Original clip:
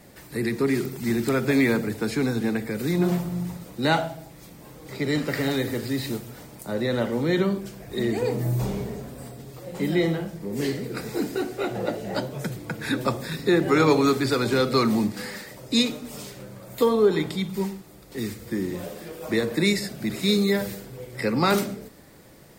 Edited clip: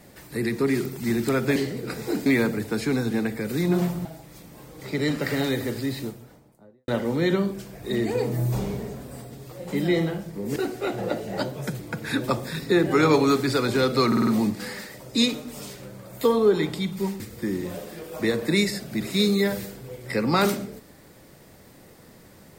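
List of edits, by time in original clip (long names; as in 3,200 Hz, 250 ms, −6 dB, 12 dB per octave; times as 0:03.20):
0:03.35–0:04.12: remove
0:05.73–0:06.95: fade out and dull
0:10.63–0:11.33: move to 0:01.56
0:14.84: stutter 0.05 s, 5 plays
0:17.77–0:18.29: remove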